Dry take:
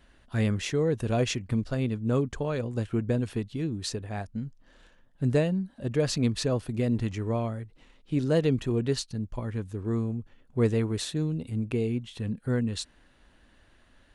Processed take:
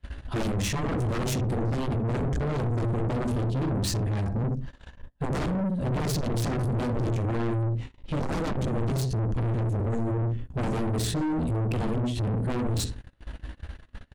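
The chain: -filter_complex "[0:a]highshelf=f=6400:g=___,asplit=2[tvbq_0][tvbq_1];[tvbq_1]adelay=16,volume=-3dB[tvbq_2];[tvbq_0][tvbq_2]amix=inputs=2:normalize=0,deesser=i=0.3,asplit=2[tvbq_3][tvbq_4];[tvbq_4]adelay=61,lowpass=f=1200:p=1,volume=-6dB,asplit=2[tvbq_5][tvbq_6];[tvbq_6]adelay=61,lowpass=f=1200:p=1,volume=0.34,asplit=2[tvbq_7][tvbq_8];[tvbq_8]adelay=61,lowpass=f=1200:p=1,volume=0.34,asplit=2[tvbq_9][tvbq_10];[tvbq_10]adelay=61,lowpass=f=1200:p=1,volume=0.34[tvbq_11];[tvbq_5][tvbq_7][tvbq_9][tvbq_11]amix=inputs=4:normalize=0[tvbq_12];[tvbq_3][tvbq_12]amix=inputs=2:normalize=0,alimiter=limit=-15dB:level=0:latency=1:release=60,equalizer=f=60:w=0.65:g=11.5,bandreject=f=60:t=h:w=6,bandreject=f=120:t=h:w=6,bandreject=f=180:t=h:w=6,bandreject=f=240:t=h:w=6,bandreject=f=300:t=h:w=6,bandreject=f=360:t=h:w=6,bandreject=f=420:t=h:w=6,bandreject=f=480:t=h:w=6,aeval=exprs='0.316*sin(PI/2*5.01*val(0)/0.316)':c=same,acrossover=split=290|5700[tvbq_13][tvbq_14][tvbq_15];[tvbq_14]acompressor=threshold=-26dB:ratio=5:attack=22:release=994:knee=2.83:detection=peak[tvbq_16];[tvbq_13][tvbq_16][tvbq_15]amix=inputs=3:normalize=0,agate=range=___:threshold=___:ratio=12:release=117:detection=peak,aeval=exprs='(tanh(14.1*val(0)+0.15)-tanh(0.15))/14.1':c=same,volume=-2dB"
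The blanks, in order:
-8.5, -30dB, -32dB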